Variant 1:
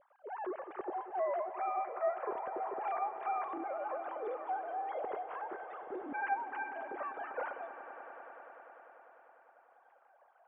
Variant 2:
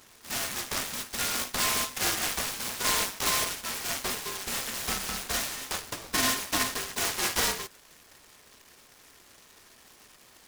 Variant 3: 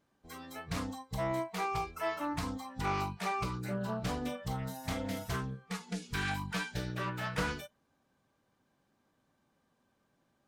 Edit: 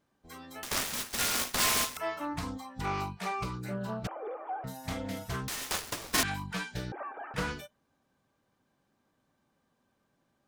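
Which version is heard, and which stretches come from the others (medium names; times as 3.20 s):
3
0.63–1.97 s: from 2
4.07–4.64 s: from 1
5.48–6.23 s: from 2
6.92–7.34 s: from 1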